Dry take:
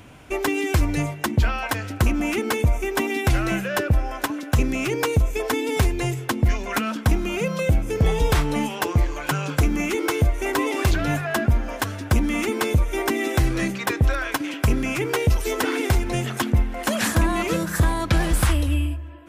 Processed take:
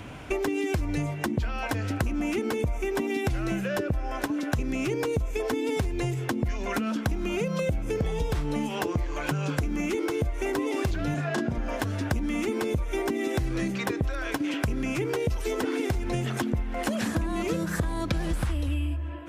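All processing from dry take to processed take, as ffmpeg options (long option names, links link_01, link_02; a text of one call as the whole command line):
ffmpeg -i in.wav -filter_complex "[0:a]asettb=1/sr,asplit=3[link_01][link_02][link_03];[link_01]atrim=end=11.144[link_04];[link_02]atrim=start=11.14:end=11.58,asetpts=PTS-STARTPTS,afade=type=in:duration=0.004:curve=qsin,afade=type=out:start_time=0.436:duration=0.004:curve=qsin,highpass=160,lowpass=7100,asplit=2[link_05][link_06];[link_06]adelay=34,volume=-2.5dB[link_07];[link_05][link_07]amix=inputs=2:normalize=0,atrim=end_sample=19404[link_08];[link_03]atrim=start=11.576[link_09];[link_04][link_08]acrossfade=duration=0.004:curve1=hsin:curve2=qsin[link_10];[link_10][link_09]acrossfade=duration=0.004:curve1=qsin:curve2=hsin,acrossover=split=560|4000[link_11][link_12][link_13];[link_11]acompressor=threshold=-18dB:ratio=4[link_14];[link_12]acompressor=threshold=-34dB:ratio=4[link_15];[link_13]acompressor=threshold=-35dB:ratio=4[link_16];[link_14][link_15][link_16]amix=inputs=3:normalize=0,highshelf=frequency=7800:gain=-9.5,acompressor=threshold=-30dB:ratio=6,volume=5dB" out.wav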